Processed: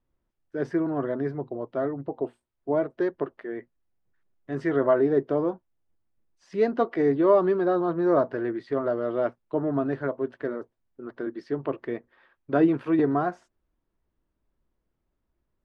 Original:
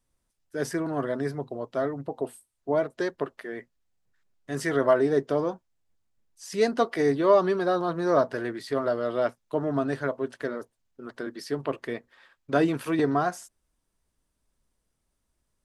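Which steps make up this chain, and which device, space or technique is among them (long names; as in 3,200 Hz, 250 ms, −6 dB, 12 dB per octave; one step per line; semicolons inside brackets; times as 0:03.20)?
phone in a pocket (low-pass filter 3,300 Hz 12 dB per octave; parametric band 340 Hz +5.5 dB 0.34 octaves; high-shelf EQ 2,300 Hz −9.5 dB)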